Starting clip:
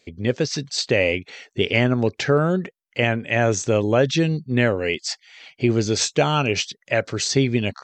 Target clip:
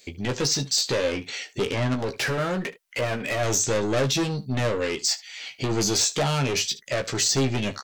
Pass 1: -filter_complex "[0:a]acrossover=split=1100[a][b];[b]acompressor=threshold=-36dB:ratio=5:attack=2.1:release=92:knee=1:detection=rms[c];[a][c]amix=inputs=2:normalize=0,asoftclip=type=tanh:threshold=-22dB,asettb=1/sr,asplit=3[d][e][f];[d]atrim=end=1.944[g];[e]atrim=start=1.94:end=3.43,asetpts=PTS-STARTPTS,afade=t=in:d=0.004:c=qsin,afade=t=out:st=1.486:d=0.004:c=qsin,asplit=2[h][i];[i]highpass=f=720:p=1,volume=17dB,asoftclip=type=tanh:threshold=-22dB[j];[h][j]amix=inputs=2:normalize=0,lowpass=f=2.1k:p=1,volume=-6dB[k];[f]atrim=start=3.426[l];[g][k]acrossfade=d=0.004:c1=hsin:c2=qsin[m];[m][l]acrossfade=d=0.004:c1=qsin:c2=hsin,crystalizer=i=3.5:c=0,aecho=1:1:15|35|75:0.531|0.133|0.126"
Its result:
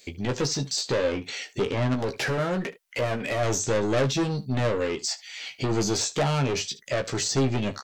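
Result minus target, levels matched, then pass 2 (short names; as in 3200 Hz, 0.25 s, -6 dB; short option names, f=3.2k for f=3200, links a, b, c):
compressor: peak gain reduction +6 dB
-filter_complex "[0:a]acrossover=split=1100[a][b];[b]acompressor=threshold=-28.5dB:ratio=5:attack=2.1:release=92:knee=1:detection=rms[c];[a][c]amix=inputs=2:normalize=0,asoftclip=type=tanh:threshold=-22dB,asettb=1/sr,asplit=3[d][e][f];[d]atrim=end=1.944[g];[e]atrim=start=1.94:end=3.43,asetpts=PTS-STARTPTS,afade=t=in:d=0.004:c=qsin,afade=t=out:st=1.486:d=0.004:c=qsin,asplit=2[h][i];[i]highpass=f=720:p=1,volume=17dB,asoftclip=type=tanh:threshold=-22dB[j];[h][j]amix=inputs=2:normalize=0,lowpass=f=2.1k:p=1,volume=-6dB[k];[f]atrim=start=3.426[l];[g][k]acrossfade=d=0.004:c1=hsin:c2=qsin[m];[m][l]acrossfade=d=0.004:c1=qsin:c2=hsin,crystalizer=i=3.5:c=0,aecho=1:1:15|35|75:0.531|0.133|0.126"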